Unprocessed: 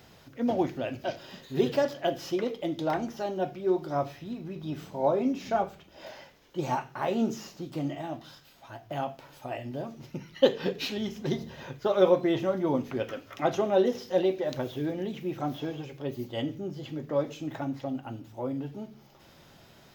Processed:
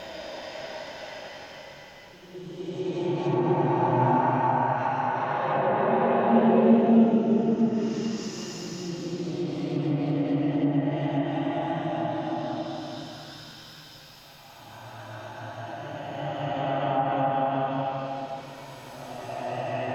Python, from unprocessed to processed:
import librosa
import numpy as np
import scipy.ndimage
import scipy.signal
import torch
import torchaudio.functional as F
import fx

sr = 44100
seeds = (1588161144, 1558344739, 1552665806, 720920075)

y = fx.paulstretch(x, sr, seeds[0], factor=5.7, window_s=0.5, from_s=5.99)
y = fx.env_lowpass_down(y, sr, base_hz=1800.0, full_db=-27.5)
y = y * 10.0 ** (7.5 / 20.0)